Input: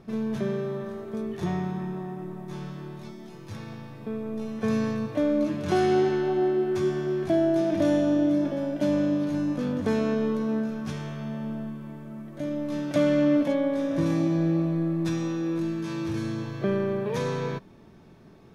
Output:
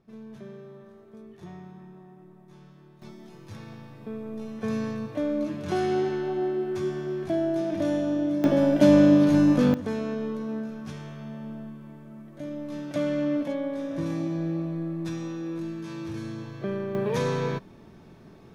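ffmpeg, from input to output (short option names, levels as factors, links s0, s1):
-af "asetnsamples=n=441:p=0,asendcmd='3.02 volume volume -3.5dB;8.44 volume volume 8dB;9.74 volume volume -5dB;16.95 volume volume 2dB',volume=0.188"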